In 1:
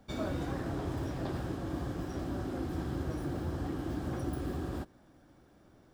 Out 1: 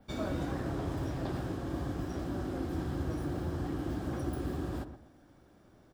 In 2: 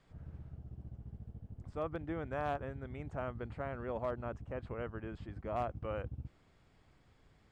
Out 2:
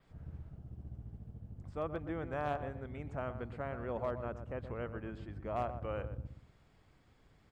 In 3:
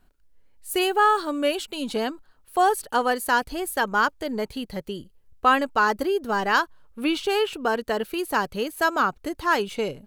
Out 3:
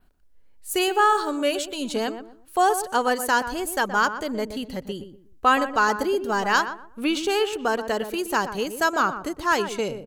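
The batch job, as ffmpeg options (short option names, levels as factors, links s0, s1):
-filter_complex "[0:a]adynamicequalizer=threshold=0.00224:dfrequency=6800:dqfactor=1.9:tfrequency=6800:tqfactor=1.9:attack=5:release=100:ratio=0.375:range=4:mode=boostabove:tftype=bell,asplit=2[s0][s1];[s1]adelay=122,lowpass=f=1200:p=1,volume=0.355,asplit=2[s2][s3];[s3]adelay=122,lowpass=f=1200:p=1,volume=0.29,asplit=2[s4][s5];[s5]adelay=122,lowpass=f=1200:p=1,volume=0.29[s6];[s0][s2][s4][s6]amix=inputs=4:normalize=0"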